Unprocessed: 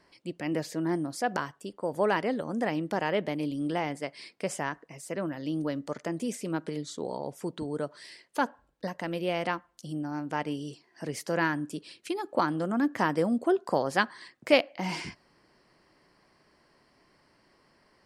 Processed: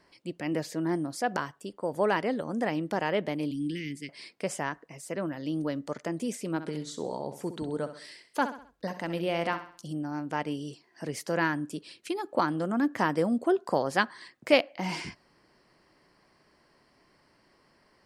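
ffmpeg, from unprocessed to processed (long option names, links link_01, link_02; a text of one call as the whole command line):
ffmpeg -i in.wav -filter_complex "[0:a]asettb=1/sr,asplit=3[link_01][link_02][link_03];[link_01]atrim=end=3.514[link_04];[link_02]atrim=start=3.51:end=4.09,asetpts=PTS-STARTPTS,afade=type=in:duration=0.004:curve=qsin,afade=type=out:start_time=0.576:duration=0.004:curve=qsin,asuperstop=centerf=860:order=8:qfactor=0.51[link_05];[link_03]atrim=start=4.086[link_06];[link_04][link_05]acrossfade=duration=0.004:curve1=hsin:curve2=qsin[link_07];[link_07][link_06]acrossfade=duration=0.004:curve1=qsin:curve2=hsin,asettb=1/sr,asplit=3[link_08][link_09][link_10];[link_08]atrim=end=6.504[link_11];[link_09]atrim=start=6.5:end=9.93,asetpts=PTS-STARTPTS,afade=type=in:duration=0.004:curve=qsin,afade=type=out:start_time=3.426:duration=0.004:curve=qsin,aecho=1:1:65|130|195|260:0.282|0.116|0.0474|0.0194,atrim=end_sample=151263[link_12];[link_10]atrim=start=9.926[link_13];[link_11][link_12]acrossfade=duration=0.004:curve1=hsin:curve2=qsin[link_14];[link_14][link_13]acrossfade=duration=0.004:curve1=qsin:curve2=hsin" out.wav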